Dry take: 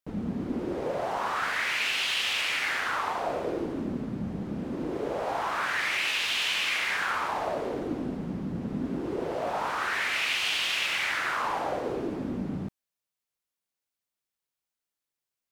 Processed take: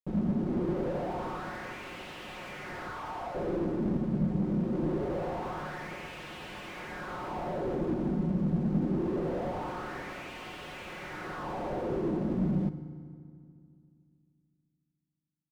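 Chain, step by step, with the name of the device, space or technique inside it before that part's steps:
0:02.90–0:03.35: high-pass filter 750 Hz 24 dB per octave
tilt shelving filter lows +7 dB, about 1,200 Hz
comb filter 5.5 ms, depth 86%
early transistor amplifier (dead-zone distortion −48.5 dBFS; slew-rate limiting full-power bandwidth 22 Hz)
feedback delay network reverb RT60 2.3 s, low-frequency decay 1.35×, high-frequency decay 0.7×, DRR 11 dB
level −4.5 dB

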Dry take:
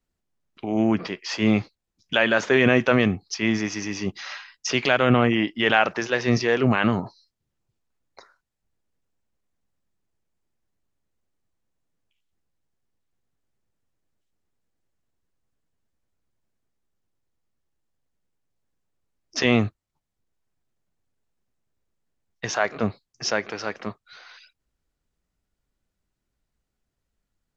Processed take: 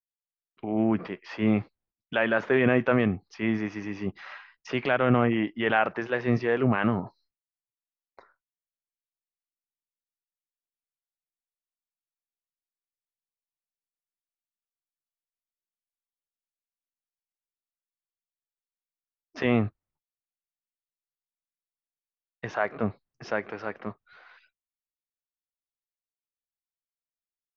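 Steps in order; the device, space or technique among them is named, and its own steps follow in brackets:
hearing-loss simulation (low-pass filter 2,000 Hz 12 dB per octave; downward expander −55 dBFS)
level −3.5 dB

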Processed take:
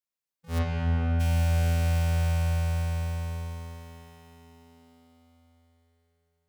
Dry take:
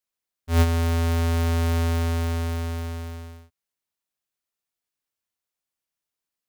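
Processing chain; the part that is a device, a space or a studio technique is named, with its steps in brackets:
shimmer-style reverb (pitch-shifted copies added +12 semitones −11 dB; convolution reverb RT60 5.0 s, pre-delay 24 ms, DRR −3 dB)
0:00.58–0:01.19: low-pass filter 3,400 Hz → 1,700 Hz 12 dB per octave
level −8.5 dB

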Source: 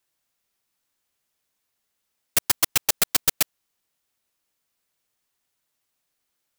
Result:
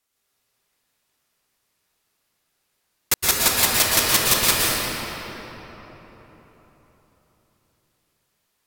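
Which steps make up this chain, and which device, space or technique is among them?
slowed and reverbed (speed change −24%; convolution reverb RT60 4.2 s, pre-delay 110 ms, DRR −6 dB)

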